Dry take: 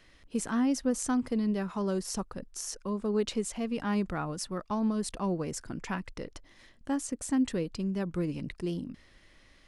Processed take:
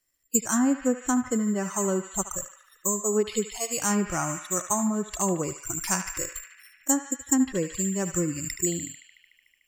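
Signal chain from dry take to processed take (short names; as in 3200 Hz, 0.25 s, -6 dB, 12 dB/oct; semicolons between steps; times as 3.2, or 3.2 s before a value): spectral noise reduction 29 dB; careless resampling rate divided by 6×, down filtered, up zero stuff; low shelf 210 Hz -4.5 dB; narrowing echo 74 ms, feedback 85%, band-pass 2200 Hz, level -7 dB; treble ducked by the level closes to 1900 Hz, closed at -16 dBFS; gain +6 dB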